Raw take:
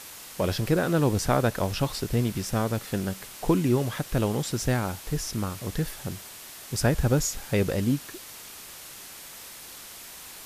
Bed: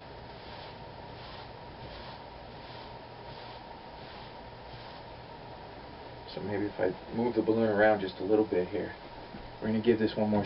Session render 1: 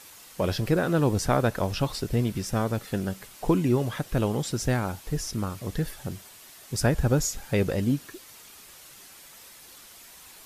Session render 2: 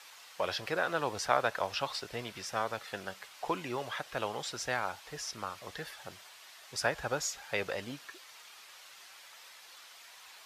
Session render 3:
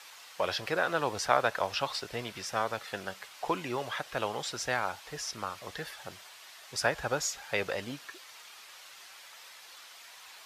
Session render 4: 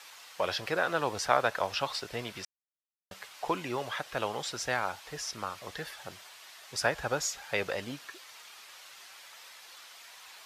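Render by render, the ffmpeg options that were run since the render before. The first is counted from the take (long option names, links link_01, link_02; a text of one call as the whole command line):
ffmpeg -i in.wav -af "afftdn=noise_reduction=7:noise_floor=-44" out.wav
ffmpeg -i in.wav -filter_complex "[0:a]highpass=53,acrossover=split=590 5700:gain=0.0794 1 0.224[link_01][link_02][link_03];[link_01][link_02][link_03]amix=inputs=3:normalize=0" out.wav
ffmpeg -i in.wav -af "volume=2.5dB" out.wav
ffmpeg -i in.wav -filter_complex "[0:a]asplit=3[link_01][link_02][link_03];[link_01]atrim=end=2.45,asetpts=PTS-STARTPTS,afade=type=out:start_time=2.446:duration=0.004:curve=hsin[link_04];[link_02]atrim=start=2.45:end=3.11,asetpts=PTS-STARTPTS,volume=0[link_05];[link_03]atrim=start=3.11,asetpts=PTS-STARTPTS,afade=type=in:duration=0.004:curve=hsin[link_06];[link_04][link_05][link_06]concat=n=3:v=0:a=1" out.wav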